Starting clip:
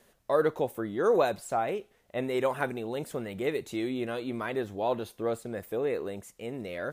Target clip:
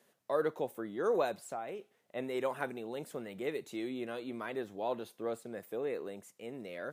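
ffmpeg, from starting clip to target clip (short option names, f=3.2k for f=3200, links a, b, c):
-filter_complex "[0:a]asettb=1/sr,asplit=3[a][b][c];[a]atrim=end=1.394[d];[b]atrim=start=1.39:end=1.79,asetpts=PTS-STARTPTS,afade=t=in:d=0.004:c=qsin,afade=t=out:st=0.396:d=0.004:c=qsin,acompressor=threshold=-34dB:ratio=2[e];[c]atrim=start=1.786[f];[d][e]acrossfade=d=0.004:c1=hsin:c2=qsin[g];[g][f]acrossfade=d=0.004:c1=qsin:c2=hsin,acrossover=split=120|1100[h][i][j];[h]acrusher=bits=4:dc=4:mix=0:aa=0.000001[k];[k][i][j]amix=inputs=3:normalize=0,volume=-6.5dB"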